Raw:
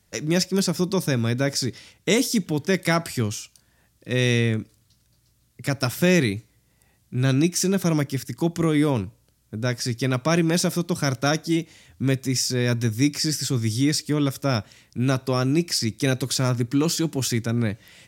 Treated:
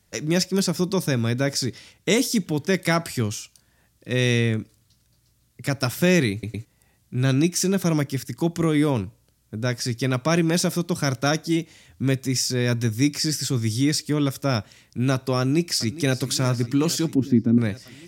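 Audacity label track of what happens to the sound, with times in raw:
6.320000	6.320000	stutter in place 0.11 s, 3 plays
15.390000	16.150000	echo throw 410 ms, feedback 80%, level -16.5 dB
17.150000	17.580000	FFT filter 150 Hz 0 dB, 250 Hz +12 dB, 540 Hz -7 dB, 5.1 kHz -19 dB, 8.5 kHz -28 dB, 13 kHz -21 dB

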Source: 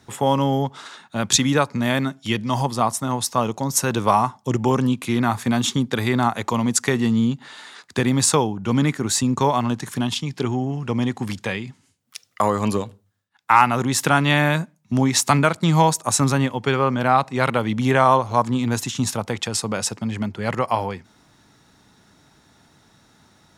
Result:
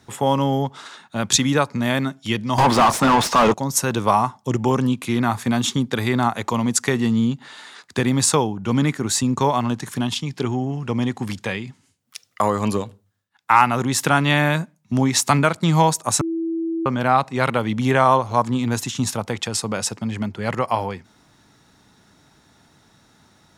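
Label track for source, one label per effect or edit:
2.580000	3.540000	overdrive pedal drive 32 dB, tone 1.7 kHz, clips at -6 dBFS
16.210000	16.860000	bleep 329 Hz -21 dBFS

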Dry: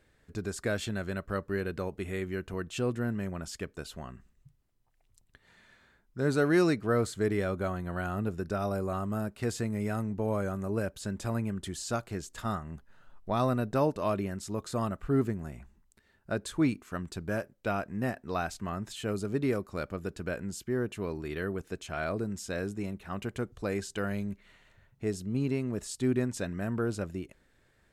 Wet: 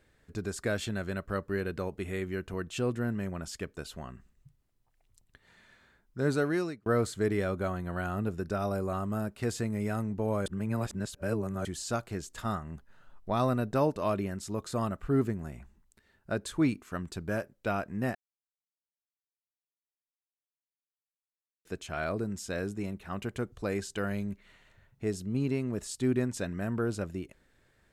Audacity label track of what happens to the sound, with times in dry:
6.280000	6.860000	fade out
10.460000	11.650000	reverse
18.150000	21.650000	mute

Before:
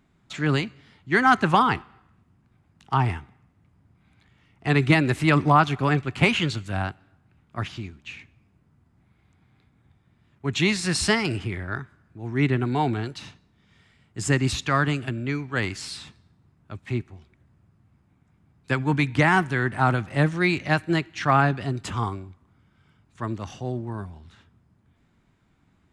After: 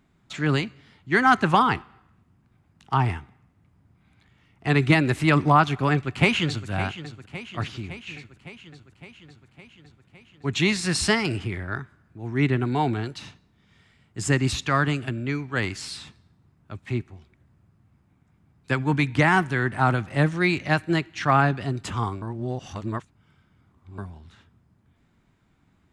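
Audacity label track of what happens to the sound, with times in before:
5.920000	6.690000	echo throw 560 ms, feedback 70%, level -13.5 dB
22.220000	23.980000	reverse

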